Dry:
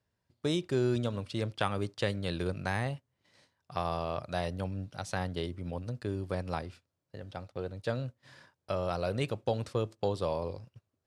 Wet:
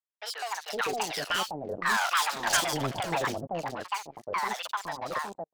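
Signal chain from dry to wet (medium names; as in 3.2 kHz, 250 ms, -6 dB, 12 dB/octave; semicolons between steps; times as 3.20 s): sawtooth pitch modulation -11 st, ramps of 858 ms; Doppler pass-by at 4.76 s, 5 m/s, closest 2.4 m; overdrive pedal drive 19 dB, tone 2.1 kHz, clips at -19 dBFS; speed mistake 7.5 ips tape played at 15 ips; waveshaping leveller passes 5; bass shelf 300 Hz -10 dB; three bands offset in time mids, highs, lows 40/510 ms, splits 730/3500 Hz; trim +1 dB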